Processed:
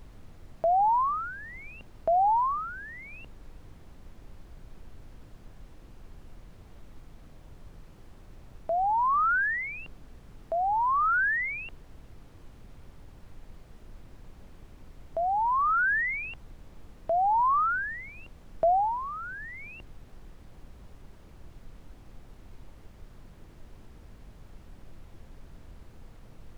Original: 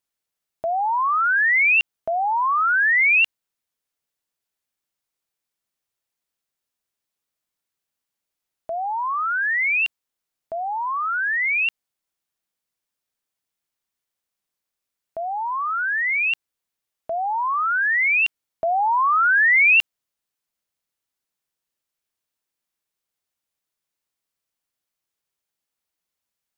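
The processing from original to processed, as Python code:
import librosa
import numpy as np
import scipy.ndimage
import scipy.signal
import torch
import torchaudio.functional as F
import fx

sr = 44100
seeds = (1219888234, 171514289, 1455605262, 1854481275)

y = fx.env_lowpass_down(x, sr, base_hz=420.0, full_db=-16.5)
y = fx.dmg_noise_colour(y, sr, seeds[0], colour='brown', level_db=-46.0)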